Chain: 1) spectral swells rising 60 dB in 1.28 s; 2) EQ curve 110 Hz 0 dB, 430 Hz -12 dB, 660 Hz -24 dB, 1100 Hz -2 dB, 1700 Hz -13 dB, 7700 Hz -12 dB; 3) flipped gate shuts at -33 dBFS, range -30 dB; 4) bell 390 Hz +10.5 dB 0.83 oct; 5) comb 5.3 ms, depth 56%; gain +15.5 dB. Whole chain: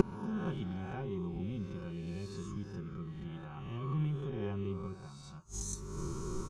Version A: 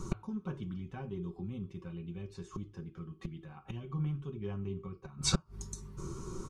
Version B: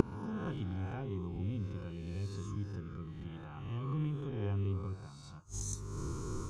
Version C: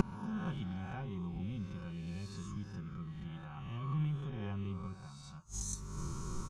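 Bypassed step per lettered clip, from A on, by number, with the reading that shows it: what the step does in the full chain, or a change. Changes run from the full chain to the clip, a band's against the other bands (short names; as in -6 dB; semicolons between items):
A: 1, 4 kHz band +13.0 dB; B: 5, 125 Hz band +3.0 dB; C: 4, 500 Hz band -9.0 dB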